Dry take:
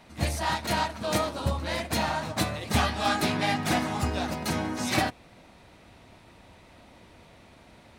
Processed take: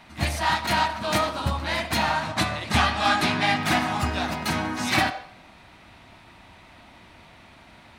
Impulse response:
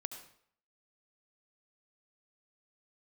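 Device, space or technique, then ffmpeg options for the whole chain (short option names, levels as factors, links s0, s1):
filtered reverb send: -filter_complex "[0:a]asplit=2[s0][s1];[s1]highpass=f=480:w=0.5412,highpass=f=480:w=1.3066,lowpass=4600[s2];[1:a]atrim=start_sample=2205[s3];[s2][s3]afir=irnorm=-1:irlink=0,volume=1.06[s4];[s0][s4]amix=inputs=2:normalize=0,asettb=1/sr,asplit=3[s5][s6][s7];[s5]atrim=end=2.234[s8];[s6]atrim=start=2.23:end=3.56,asetpts=PTS-STARTPTS,afade=t=in:d=0.004:c=qsin,afade=t=out:st=1.326:d=0.004:c=qsin,lowpass=11000[s9];[s7]atrim=start=3.556[s10];[s8][s9]acrossfade=d=0.004:c1=hsin:c2=qsin[s11];[s11][s10]acrossfade=d=0.004:c1=qsin:c2=hsin,volume=1.19"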